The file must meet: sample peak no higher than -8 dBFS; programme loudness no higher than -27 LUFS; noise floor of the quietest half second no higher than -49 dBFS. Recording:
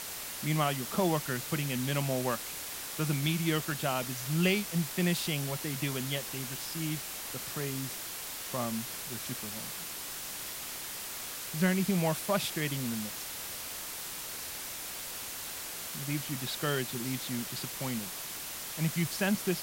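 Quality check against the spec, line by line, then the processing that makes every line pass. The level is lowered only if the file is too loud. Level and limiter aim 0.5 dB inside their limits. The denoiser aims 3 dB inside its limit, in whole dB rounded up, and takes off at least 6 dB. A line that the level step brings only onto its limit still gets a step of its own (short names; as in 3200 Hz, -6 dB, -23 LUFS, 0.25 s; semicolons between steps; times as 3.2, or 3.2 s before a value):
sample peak -14.0 dBFS: OK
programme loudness -33.0 LUFS: OK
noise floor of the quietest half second -40 dBFS: fail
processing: denoiser 12 dB, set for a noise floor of -40 dBFS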